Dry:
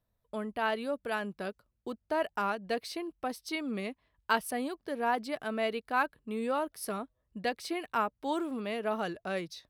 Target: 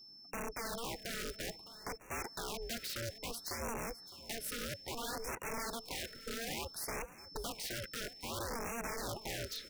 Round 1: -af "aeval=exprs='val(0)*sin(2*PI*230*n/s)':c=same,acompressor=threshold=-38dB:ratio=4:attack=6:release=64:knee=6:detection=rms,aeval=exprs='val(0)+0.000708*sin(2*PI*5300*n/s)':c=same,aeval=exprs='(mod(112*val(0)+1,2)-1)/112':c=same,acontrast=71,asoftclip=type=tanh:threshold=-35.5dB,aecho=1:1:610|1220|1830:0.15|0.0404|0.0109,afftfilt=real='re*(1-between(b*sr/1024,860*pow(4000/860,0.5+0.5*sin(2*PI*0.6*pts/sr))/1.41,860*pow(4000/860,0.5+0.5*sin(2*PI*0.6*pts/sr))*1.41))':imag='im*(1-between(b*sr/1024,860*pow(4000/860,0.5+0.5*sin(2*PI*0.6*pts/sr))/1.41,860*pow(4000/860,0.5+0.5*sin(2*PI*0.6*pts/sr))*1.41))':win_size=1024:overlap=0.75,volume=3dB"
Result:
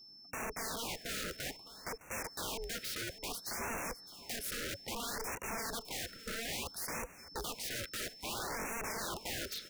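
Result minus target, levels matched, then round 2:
compressor: peak gain reduction -5 dB
-af "aeval=exprs='val(0)*sin(2*PI*230*n/s)':c=same,acompressor=threshold=-45dB:ratio=4:attack=6:release=64:knee=6:detection=rms,aeval=exprs='val(0)+0.000708*sin(2*PI*5300*n/s)':c=same,aeval=exprs='(mod(112*val(0)+1,2)-1)/112':c=same,acontrast=71,asoftclip=type=tanh:threshold=-35.5dB,aecho=1:1:610|1220|1830:0.15|0.0404|0.0109,afftfilt=real='re*(1-between(b*sr/1024,860*pow(4000/860,0.5+0.5*sin(2*PI*0.6*pts/sr))/1.41,860*pow(4000/860,0.5+0.5*sin(2*PI*0.6*pts/sr))*1.41))':imag='im*(1-between(b*sr/1024,860*pow(4000/860,0.5+0.5*sin(2*PI*0.6*pts/sr))/1.41,860*pow(4000/860,0.5+0.5*sin(2*PI*0.6*pts/sr))*1.41))':win_size=1024:overlap=0.75,volume=3dB"

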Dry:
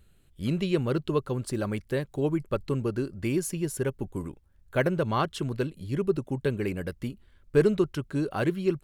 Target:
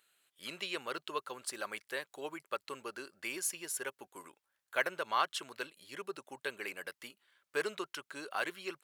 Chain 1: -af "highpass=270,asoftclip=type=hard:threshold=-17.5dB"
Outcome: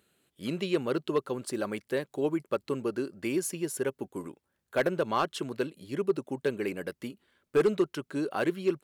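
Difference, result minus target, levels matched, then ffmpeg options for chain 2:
250 Hz band +10.5 dB
-af "highpass=1k,asoftclip=type=hard:threshold=-17.5dB"

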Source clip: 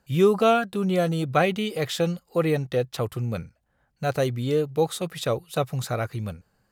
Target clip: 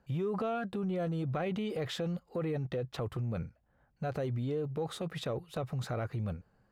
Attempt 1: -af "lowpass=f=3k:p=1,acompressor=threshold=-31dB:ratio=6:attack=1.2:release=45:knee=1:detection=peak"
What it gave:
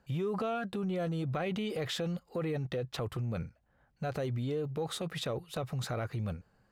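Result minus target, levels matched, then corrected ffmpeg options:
4000 Hz band +4.0 dB
-af "lowpass=f=1.4k:p=1,acompressor=threshold=-31dB:ratio=6:attack=1.2:release=45:knee=1:detection=peak"

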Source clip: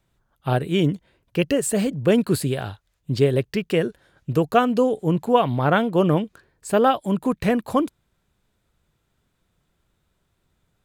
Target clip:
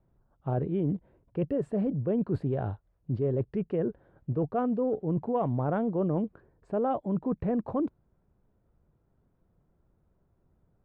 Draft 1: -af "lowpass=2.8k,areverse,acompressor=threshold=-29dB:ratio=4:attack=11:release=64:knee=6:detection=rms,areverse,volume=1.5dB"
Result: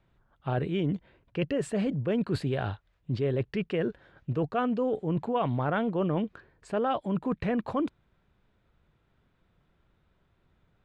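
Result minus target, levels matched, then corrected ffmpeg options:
2000 Hz band +11.0 dB
-af "lowpass=780,areverse,acompressor=threshold=-29dB:ratio=4:attack=11:release=64:knee=6:detection=rms,areverse,volume=1.5dB"

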